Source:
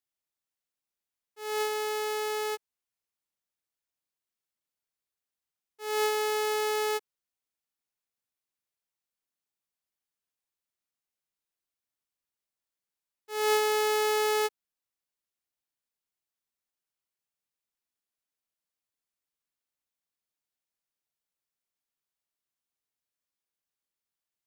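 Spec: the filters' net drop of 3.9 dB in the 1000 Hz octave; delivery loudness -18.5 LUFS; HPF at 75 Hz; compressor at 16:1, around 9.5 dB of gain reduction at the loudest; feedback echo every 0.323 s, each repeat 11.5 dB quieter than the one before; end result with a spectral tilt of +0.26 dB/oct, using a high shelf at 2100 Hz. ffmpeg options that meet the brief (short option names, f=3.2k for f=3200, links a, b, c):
-af "highpass=75,equalizer=f=1k:t=o:g=-6,highshelf=f=2.1k:g=4.5,acompressor=threshold=-30dB:ratio=16,aecho=1:1:323|646|969:0.266|0.0718|0.0194,volume=16.5dB"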